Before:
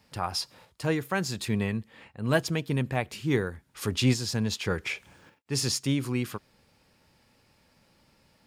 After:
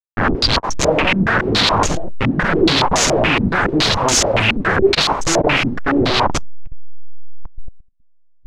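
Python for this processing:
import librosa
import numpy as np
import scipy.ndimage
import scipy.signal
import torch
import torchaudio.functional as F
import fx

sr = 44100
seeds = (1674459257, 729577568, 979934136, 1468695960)

p1 = fx.delta_hold(x, sr, step_db=-27.0)
p2 = fx.hum_notches(p1, sr, base_hz=50, count=6)
p3 = p2 + fx.room_early_taps(p2, sr, ms=(11, 46), db=(-5.5, -13.0), dry=0)
p4 = fx.echo_pitch(p3, sr, ms=337, semitones=3, count=3, db_per_echo=-6.0)
p5 = np.clip(p4, -10.0 ** (-25.5 / 20.0), 10.0 ** (-25.5 / 20.0))
p6 = p4 + F.gain(torch.from_numpy(p5), -11.5).numpy()
p7 = fx.dereverb_blind(p6, sr, rt60_s=1.1)
p8 = fx.leveller(p7, sr, passes=5)
p9 = fx.fold_sine(p8, sr, drive_db=17, ceiling_db=-8.0)
p10 = fx.level_steps(p9, sr, step_db=15)
p11 = fx.filter_held_lowpass(p10, sr, hz=7.1, low_hz=240.0, high_hz=6600.0)
y = F.gain(torch.from_numpy(p11), -2.0).numpy()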